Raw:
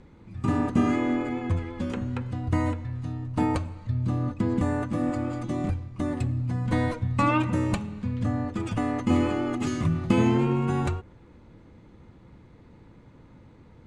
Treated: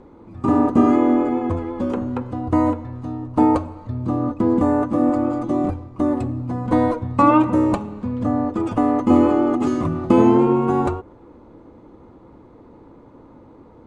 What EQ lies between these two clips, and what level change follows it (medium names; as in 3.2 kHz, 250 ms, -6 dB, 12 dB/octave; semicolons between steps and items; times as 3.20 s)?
bass shelf 120 Hz +3.5 dB; high-order bell 560 Hz +13 dB 2.7 oct; -2.5 dB